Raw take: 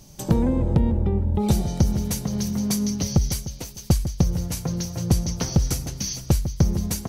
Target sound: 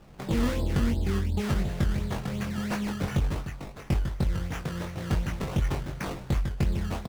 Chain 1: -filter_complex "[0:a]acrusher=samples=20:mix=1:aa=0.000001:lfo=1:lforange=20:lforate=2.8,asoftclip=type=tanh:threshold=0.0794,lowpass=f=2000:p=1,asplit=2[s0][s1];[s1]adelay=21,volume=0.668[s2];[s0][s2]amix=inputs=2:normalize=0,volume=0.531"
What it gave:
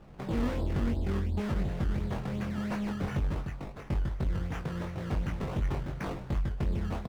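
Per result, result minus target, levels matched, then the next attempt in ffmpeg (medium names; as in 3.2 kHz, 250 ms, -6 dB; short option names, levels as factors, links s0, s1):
8 kHz band -7.5 dB; saturation: distortion +8 dB
-filter_complex "[0:a]acrusher=samples=20:mix=1:aa=0.000001:lfo=1:lforange=20:lforate=2.8,asoftclip=type=tanh:threshold=0.0794,lowpass=f=7400:p=1,asplit=2[s0][s1];[s1]adelay=21,volume=0.668[s2];[s0][s2]amix=inputs=2:normalize=0,volume=0.531"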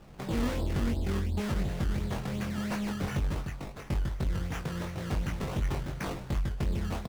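saturation: distortion +8 dB
-filter_complex "[0:a]acrusher=samples=20:mix=1:aa=0.000001:lfo=1:lforange=20:lforate=2.8,asoftclip=type=tanh:threshold=0.2,lowpass=f=7400:p=1,asplit=2[s0][s1];[s1]adelay=21,volume=0.668[s2];[s0][s2]amix=inputs=2:normalize=0,volume=0.531"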